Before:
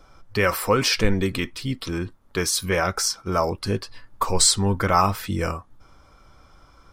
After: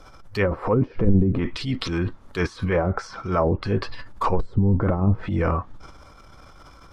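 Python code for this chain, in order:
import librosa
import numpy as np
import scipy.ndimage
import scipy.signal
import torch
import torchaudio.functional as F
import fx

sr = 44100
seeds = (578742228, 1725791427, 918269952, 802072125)

y = fx.transient(x, sr, attack_db=-8, sustain_db=8)
y = fx.env_lowpass_down(y, sr, base_hz=310.0, full_db=-16.5)
y = F.gain(torch.from_numpy(y), 4.0).numpy()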